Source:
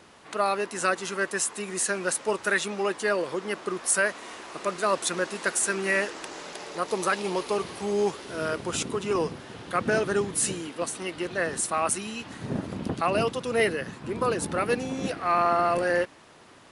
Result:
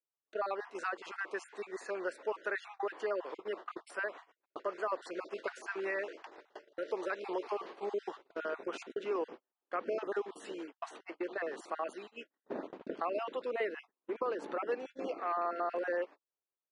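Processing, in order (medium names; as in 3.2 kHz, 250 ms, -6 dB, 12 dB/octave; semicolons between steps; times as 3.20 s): random holes in the spectrogram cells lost 27%; high-pass 340 Hz 24 dB/octave; gate -38 dBFS, range -47 dB; compression 2:1, threshold -34 dBFS, peak gain reduction 8.5 dB; tape spacing loss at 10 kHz 31 dB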